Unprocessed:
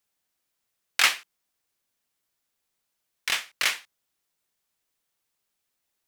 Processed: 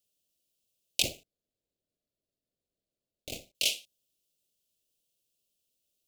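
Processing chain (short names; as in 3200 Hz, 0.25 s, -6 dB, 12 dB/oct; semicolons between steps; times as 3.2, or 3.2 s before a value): 1.02–3.55 median filter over 15 samples; elliptic band-stop 620–2800 Hz, stop band 40 dB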